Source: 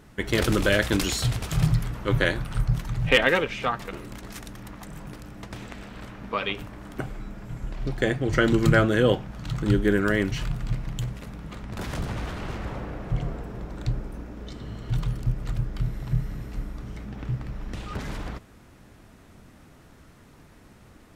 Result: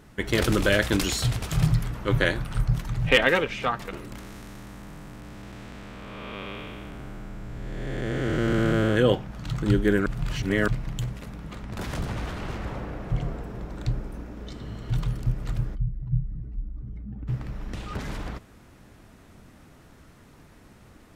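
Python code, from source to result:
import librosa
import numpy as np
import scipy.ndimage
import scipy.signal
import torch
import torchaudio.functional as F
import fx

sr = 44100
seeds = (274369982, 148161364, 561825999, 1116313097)

y = fx.spec_blur(x, sr, span_ms=496.0, at=(4.18, 8.95), fade=0.02)
y = fx.spec_expand(y, sr, power=1.8, at=(15.74, 17.27), fade=0.02)
y = fx.edit(y, sr, fx.reverse_span(start_s=10.06, length_s=0.62), tone=tone)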